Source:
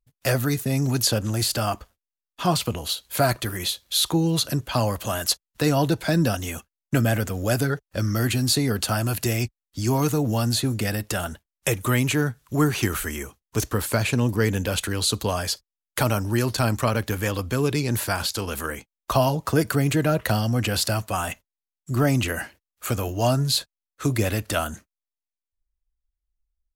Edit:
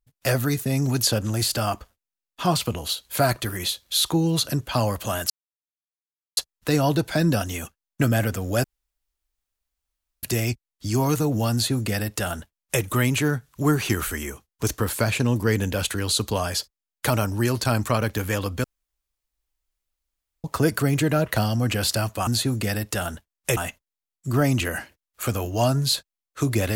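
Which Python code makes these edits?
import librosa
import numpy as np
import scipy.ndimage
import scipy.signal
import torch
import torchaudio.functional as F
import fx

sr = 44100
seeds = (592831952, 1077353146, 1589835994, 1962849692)

y = fx.edit(x, sr, fx.insert_silence(at_s=5.3, length_s=1.07),
    fx.room_tone_fill(start_s=7.57, length_s=1.59),
    fx.duplicate(start_s=10.45, length_s=1.3, to_s=21.2),
    fx.room_tone_fill(start_s=17.57, length_s=1.8), tone=tone)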